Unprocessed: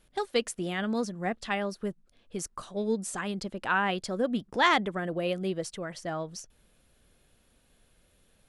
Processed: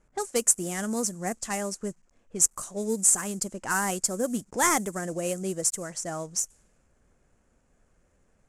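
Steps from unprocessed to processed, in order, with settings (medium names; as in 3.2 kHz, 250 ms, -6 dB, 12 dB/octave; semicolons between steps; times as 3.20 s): CVSD coder 64 kbps; resonant high shelf 5.2 kHz +13 dB, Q 3; level-controlled noise filter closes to 1.8 kHz, open at -24.5 dBFS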